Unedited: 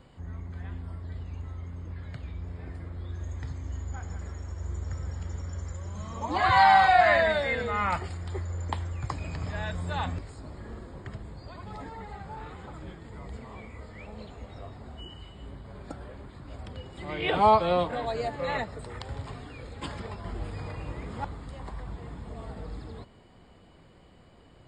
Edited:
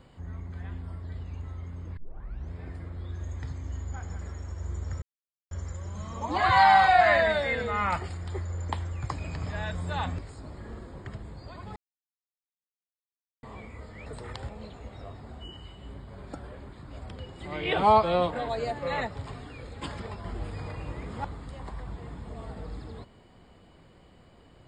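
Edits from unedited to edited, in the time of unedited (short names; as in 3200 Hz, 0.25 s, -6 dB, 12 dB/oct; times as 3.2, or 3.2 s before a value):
1.97 tape start 0.55 s
5.02–5.51 mute
11.76–13.43 mute
18.72–19.15 move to 14.06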